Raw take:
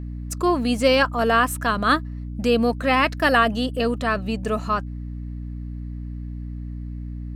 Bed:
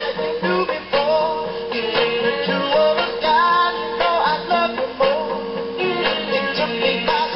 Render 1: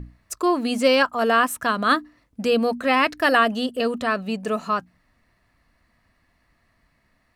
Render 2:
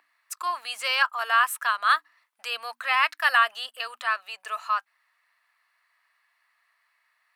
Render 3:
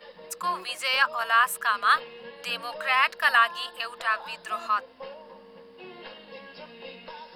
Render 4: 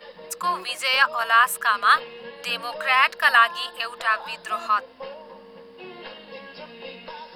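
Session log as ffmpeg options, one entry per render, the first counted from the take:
-af "bandreject=f=60:t=h:w=6,bandreject=f=120:t=h:w=6,bandreject=f=180:t=h:w=6,bandreject=f=240:t=h:w=6,bandreject=f=300:t=h:w=6"
-af "highpass=f=990:w=0.5412,highpass=f=990:w=1.3066,equalizer=f=6100:t=o:w=0.99:g=-5.5"
-filter_complex "[1:a]volume=0.0631[s0];[0:a][s0]amix=inputs=2:normalize=0"
-af "volume=1.58"

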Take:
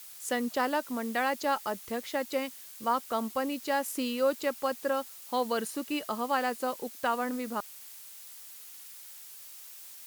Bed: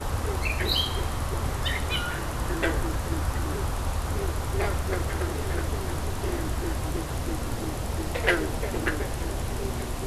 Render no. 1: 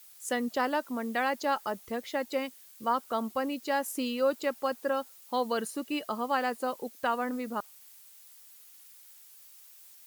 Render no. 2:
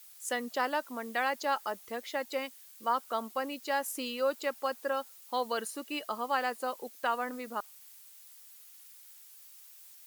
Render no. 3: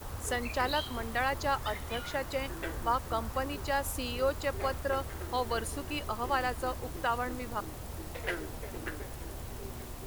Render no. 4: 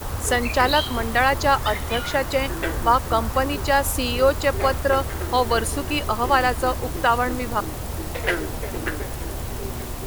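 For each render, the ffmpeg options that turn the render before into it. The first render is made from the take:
-af "afftdn=nr=8:nf=-48"
-af "highpass=50,equalizer=f=94:w=0.38:g=-14"
-filter_complex "[1:a]volume=0.251[s0];[0:a][s0]amix=inputs=2:normalize=0"
-af "volume=3.98"

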